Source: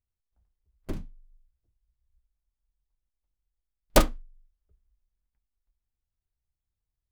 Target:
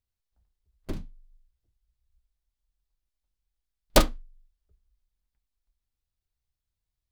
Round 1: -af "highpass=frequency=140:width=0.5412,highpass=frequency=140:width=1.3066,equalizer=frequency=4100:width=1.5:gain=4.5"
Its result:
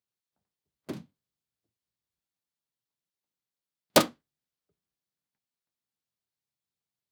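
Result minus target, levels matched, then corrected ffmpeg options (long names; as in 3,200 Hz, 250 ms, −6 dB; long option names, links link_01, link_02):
125 Hz band −6.0 dB
-af "equalizer=frequency=4100:width=1.5:gain=4.5"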